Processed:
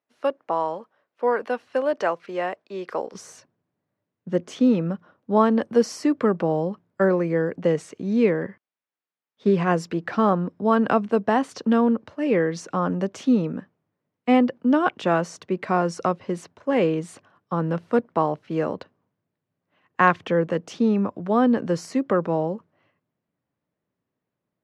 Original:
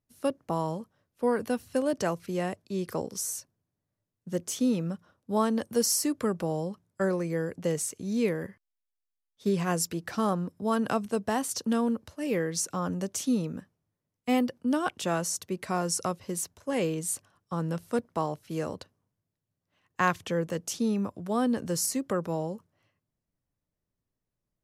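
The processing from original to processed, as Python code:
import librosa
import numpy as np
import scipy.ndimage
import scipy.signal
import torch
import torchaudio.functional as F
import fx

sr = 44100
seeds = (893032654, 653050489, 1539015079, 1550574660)

y = fx.bandpass_edges(x, sr, low_hz=fx.steps((0.0, 520.0), (3.14, 170.0)), high_hz=2400.0)
y = y * 10.0 ** (8.5 / 20.0)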